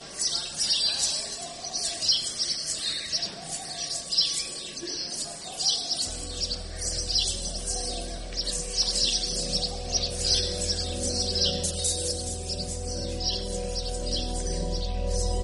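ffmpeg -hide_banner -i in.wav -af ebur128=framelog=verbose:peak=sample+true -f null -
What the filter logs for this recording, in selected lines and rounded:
Integrated loudness:
  I:         -26.9 LUFS
  Threshold: -36.9 LUFS
Loudness range:
  LRA:         2.8 LU
  Threshold: -46.9 LUFS
  LRA low:   -28.2 LUFS
  LRA high:  -25.4 LUFS
Sample peak:
  Peak:      -10.4 dBFS
True peak:
  Peak:      -10.2 dBFS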